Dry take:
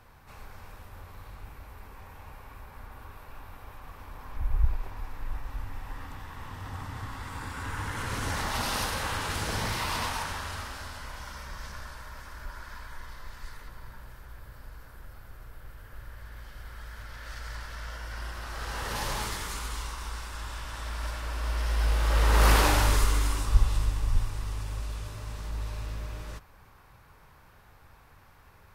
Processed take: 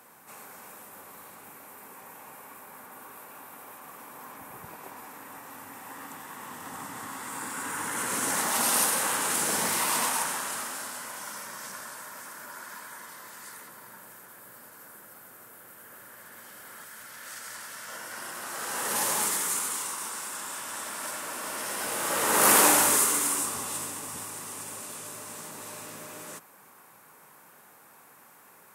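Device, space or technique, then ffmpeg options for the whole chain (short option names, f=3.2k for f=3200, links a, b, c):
budget condenser microphone: -filter_complex "[0:a]highpass=f=190:w=0.5412,highpass=f=190:w=1.3066,asettb=1/sr,asplit=3[a][b][c];[a]atrim=end=16.844[d];[b]atrim=start=16.84:end=17.89,asetpts=PTS-STARTPTS,afade=t=in:d=0.004:c=qsin,afade=t=out:st=1.046:d=0.004:c=qsin,equalizer=f=490:w=0.39:g=-4.5[e];[c]atrim=start=17.886[f];[d][e]acrossfade=d=0.004:c1=hsin:c2=qsin[g];[g][f]acrossfade=d=0.004:c1=qsin:c2=hsin,highpass=62,highshelf=f=6.2k:t=q:w=1.5:g=10,volume=3dB"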